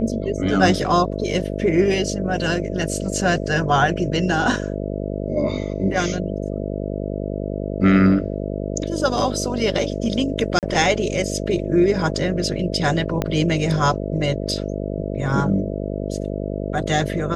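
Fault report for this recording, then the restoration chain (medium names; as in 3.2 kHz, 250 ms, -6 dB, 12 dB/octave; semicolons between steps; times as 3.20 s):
buzz 50 Hz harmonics 13 -26 dBFS
10.59–10.63 s: dropout 38 ms
13.22 s: pop -8 dBFS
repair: de-click; de-hum 50 Hz, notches 13; interpolate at 10.59 s, 38 ms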